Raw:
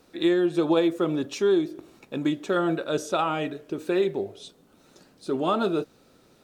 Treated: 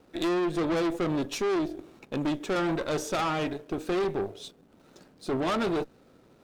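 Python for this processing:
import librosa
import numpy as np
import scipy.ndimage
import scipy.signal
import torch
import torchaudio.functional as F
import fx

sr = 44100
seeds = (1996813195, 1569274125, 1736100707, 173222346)

y = fx.tube_stage(x, sr, drive_db=29.0, bias=0.65)
y = fx.backlash(y, sr, play_db=-59.0)
y = y * 10.0 ** (4.5 / 20.0)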